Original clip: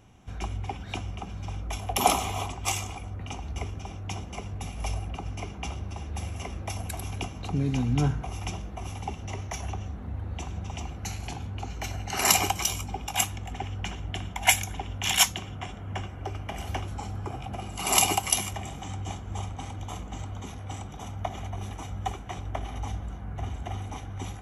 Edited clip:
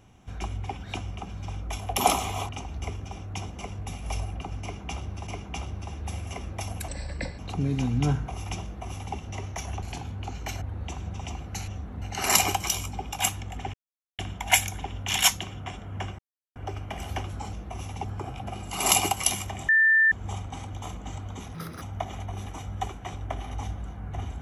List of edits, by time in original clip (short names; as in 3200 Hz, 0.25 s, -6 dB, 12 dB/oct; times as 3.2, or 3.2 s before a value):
2.49–3.23 cut
5.36–6.01 loop, 2 plays
6.97–7.34 speed 73%
8.59–9.11 copy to 17.11
9.78–10.12 swap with 11.18–11.97
13.69–14.14 mute
16.14 insert silence 0.37 s
18.75–19.18 bleep 1780 Hz -16 dBFS
20.61–21.06 speed 167%